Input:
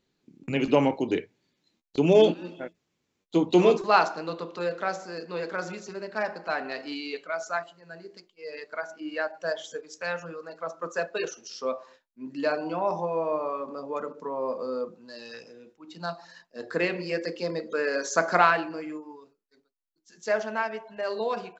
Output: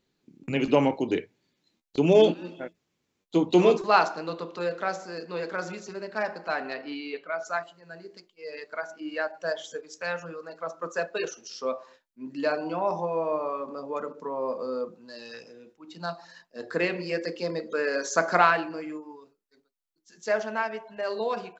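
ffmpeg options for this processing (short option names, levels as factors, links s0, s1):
-filter_complex "[0:a]asettb=1/sr,asplit=3[s0][s1][s2];[s0]atrim=end=6.744[s3];[s1]atrim=start=6.74:end=7.45,asetpts=PTS-STARTPTS,afade=t=in:d=0.004:c=qsin,afade=t=out:st=0.706:d=0.004:c=qsin,lowpass=3100[s4];[s2]atrim=start=7.446[s5];[s3][s4]acrossfade=d=0.004:c1=hsin:c2=qsin[s6];[s6][s5]acrossfade=d=0.004:c1=qsin:c2=hsin"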